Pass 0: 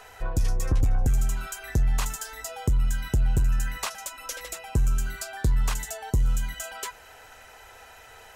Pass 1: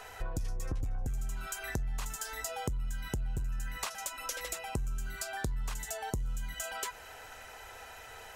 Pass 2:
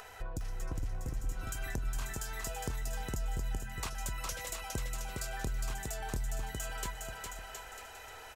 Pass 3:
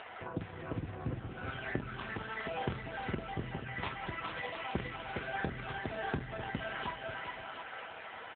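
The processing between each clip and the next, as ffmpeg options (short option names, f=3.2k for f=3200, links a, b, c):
-af "acompressor=threshold=-33dB:ratio=6"
-af "acompressor=mode=upward:threshold=-45dB:ratio=2.5,aecho=1:1:410|717.5|948.1|1121|1251:0.631|0.398|0.251|0.158|0.1,volume=-3.5dB"
-filter_complex "[0:a]asplit=2[a][b];[b]adelay=46,volume=-9.5dB[c];[a][c]amix=inputs=2:normalize=0,volume=7.5dB" -ar 8000 -c:a libopencore_amrnb -b:a 5900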